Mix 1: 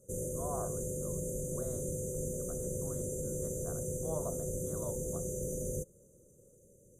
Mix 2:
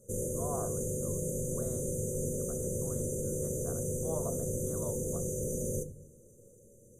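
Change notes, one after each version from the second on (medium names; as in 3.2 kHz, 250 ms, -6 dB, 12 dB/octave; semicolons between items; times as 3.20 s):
reverb: on, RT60 0.65 s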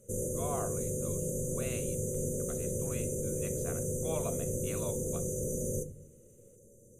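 speech: remove distance through air 260 m; master: remove Butterworth band-stop 2.5 kHz, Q 0.71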